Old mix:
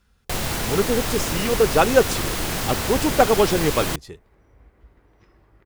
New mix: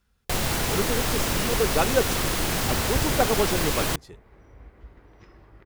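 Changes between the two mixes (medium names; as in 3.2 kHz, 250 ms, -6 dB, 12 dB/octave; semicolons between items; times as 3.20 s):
speech -7.0 dB; second sound +5.0 dB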